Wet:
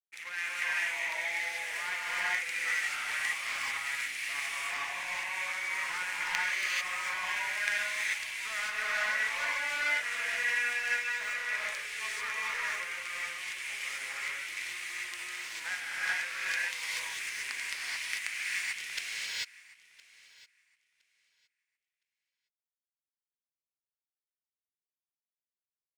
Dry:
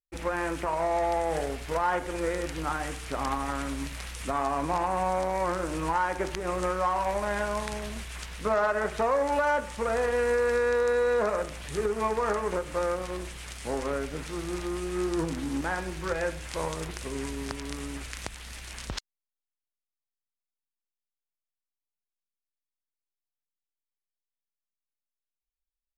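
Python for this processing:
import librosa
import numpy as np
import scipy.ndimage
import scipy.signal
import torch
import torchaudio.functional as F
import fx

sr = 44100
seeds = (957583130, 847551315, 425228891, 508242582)

p1 = fx.dereverb_blind(x, sr, rt60_s=0.83)
p2 = 10.0 ** (-32.0 / 20.0) * (np.abs((p1 / 10.0 ** (-32.0 / 20.0) + 3.0) % 4.0 - 2.0) - 1.0)
p3 = p1 + (p2 * 10.0 ** (-8.0 / 20.0))
p4 = fx.highpass_res(p3, sr, hz=2100.0, q=4.1)
p5 = p4 + fx.echo_feedback(p4, sr, ms=1014, feedback_pct=28, wet_db=-15, dry=0)
p6 = fx.power_curve(p5, sr, exponent=1.4)
y = fx.rev_gated(p6, sr, seeds[0], gate_ms=470, shape='rising', drr_db=-7.5)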